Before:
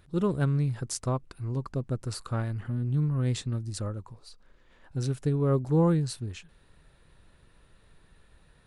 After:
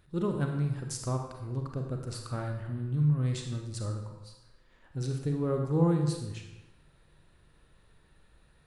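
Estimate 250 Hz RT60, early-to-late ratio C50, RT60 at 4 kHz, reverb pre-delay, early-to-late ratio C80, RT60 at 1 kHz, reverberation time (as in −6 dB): 1.0 s, 5.0 dB, 0.80 s, 33 ms, 7.5 dB, 1.0 s, 1.0 s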